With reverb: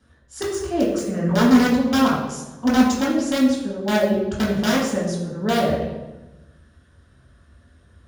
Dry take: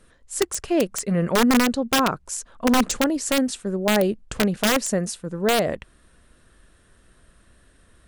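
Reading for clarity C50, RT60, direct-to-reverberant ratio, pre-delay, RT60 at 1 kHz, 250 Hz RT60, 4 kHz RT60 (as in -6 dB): 2.5 dB, 1.1 s, -7.0 dB, 3 ms, 1.1 s, 1.5 s, 0.80 s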